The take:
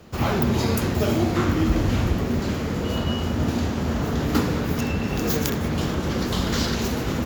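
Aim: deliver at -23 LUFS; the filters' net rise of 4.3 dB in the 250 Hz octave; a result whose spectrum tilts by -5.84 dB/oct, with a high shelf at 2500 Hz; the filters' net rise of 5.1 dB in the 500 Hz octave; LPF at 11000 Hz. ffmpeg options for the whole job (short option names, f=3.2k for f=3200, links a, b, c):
-af "lowpass=11k,equalizer=f=250:t=o:g=4,equalizer=f=500:t=o:g=5,highshelf=f=2.5k:g=3.5,volume=-2.5dB"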